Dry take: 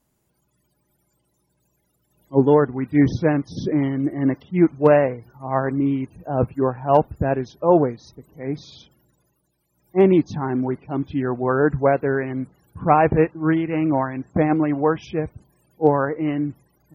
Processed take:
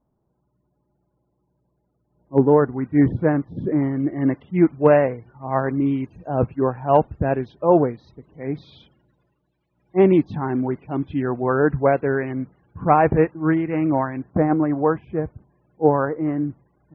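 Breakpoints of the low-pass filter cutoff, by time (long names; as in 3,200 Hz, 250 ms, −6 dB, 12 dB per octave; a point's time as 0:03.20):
low-pass filter 24 dB per octave
1,100 Hz
from 0:02.38 1,900 Hz
from 0:03.97 2,800 Hz
from 0:05.60 5,500 Hz
from 0:06.42 3,400 Hz
from 0:12.34 2,400 Hz
from 0:14.22 1,700 Hz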